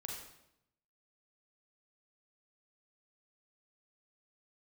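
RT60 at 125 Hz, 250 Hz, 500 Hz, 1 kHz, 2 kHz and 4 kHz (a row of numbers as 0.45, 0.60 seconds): 1.1, 0.95, 0.80, 0.75, 0.70, 0.70 seconds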